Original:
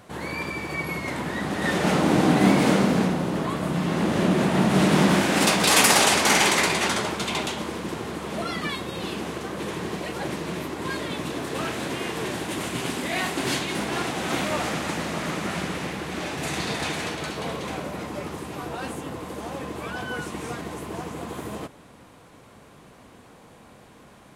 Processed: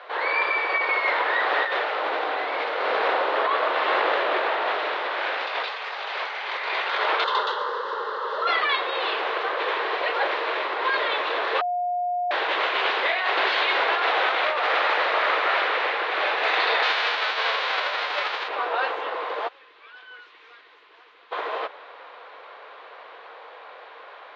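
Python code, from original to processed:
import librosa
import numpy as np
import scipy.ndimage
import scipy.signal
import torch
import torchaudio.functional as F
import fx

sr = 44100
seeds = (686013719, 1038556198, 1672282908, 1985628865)

y = fx.fixed_phaser(x, sr, hz=470.0, stages=8, at=(7.24, 8.47))
y = fx.envelope_flatten(y, sr, power=0.3, at=(16.82, 18.47), fade=0.02)
y = fx.tone_stack(y, sr, knobs='6-0-2', at=(19.47, 21.31), fade=0.02)
y = fx.edit(y, sr, fx.bleep(start_s=11.61, length_s=0.7, hz=713.0, db=-22.0), tone=tone)
y = scipy.signal.sosfilt(scipy.signal.ellip(3, 1.0, 40, [460.0, 4000.0], 'bandpass', fs=sr, output='sos'), y)
y = fx.peak_eq(y, sr, hz=1400.0, db=9.0, octaves=2.9)
y = fx.over_compress(y, sr, threshold_db=-24.0, ratio=-1.0)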